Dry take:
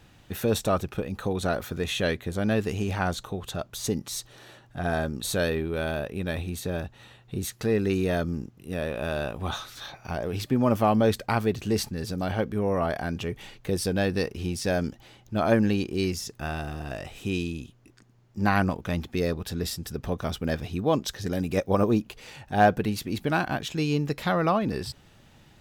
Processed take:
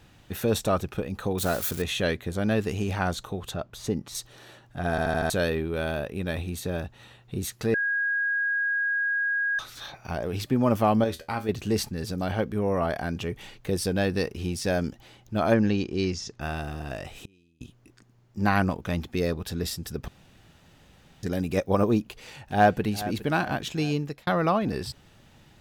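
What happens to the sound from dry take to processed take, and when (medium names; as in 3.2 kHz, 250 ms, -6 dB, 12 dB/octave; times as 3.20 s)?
1.38–1.82 s: zero-crossing glitches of -24.5 dBFS
3.54–4.15 s: treble shelf 4 kHz -11 dB
4.90 s: stutter in place 0.08 s, 5 plays
7.74–9.59 s: bleep 1.64 kHz -23 dBFS
11.04–11.49 s: feedback comb 81 Hz, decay 0.19 s, mix 80%
15.54–16.41 s: Chebyshev low-pass 6.2 kHz, order 3
17.17–17.61 s: inverted gate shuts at -27 dBFS, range -33 dB
20.08–21.23 s: room tone
22.07–22.86 s: echo throw 410 ms, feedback 55%, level -15 dB
23.75–24.27 s: fade out equal-power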